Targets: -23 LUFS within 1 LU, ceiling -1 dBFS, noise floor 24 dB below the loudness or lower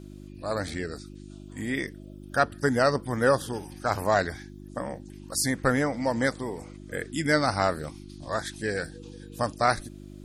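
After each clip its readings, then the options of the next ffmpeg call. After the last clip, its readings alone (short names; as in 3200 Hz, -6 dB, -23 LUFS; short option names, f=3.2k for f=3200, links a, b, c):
hum 50 Hz; harmonics up to 350 Hz; hum level -42 dBFS; loudness -28.0 LUFS; peak -6.5 dBFS; loudness target -23.0 LUFS
-> -af "bandreject=f=50:t=h:w=4,bandreject=f=100:t=h:w=4,bandreject=f=150:t=h:w=4,bandreject=f=200:t=h:w=4,bandreject=f=250:t=h:w=4,bandreject=f=300:t=h:w=4,bandreject=f=350:t=h:w=4"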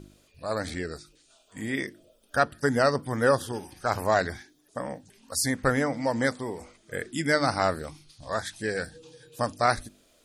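hum none; loudness -28.0 LUFS; peak -7.0 dBFS; loudness target -23.0 LUFS
-> -af "volume=5dB"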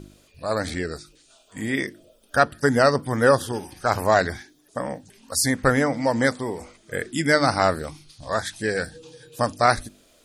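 loudness -23.0 LUFS; peak -2.0 dBFS; noise floor -58 dBFS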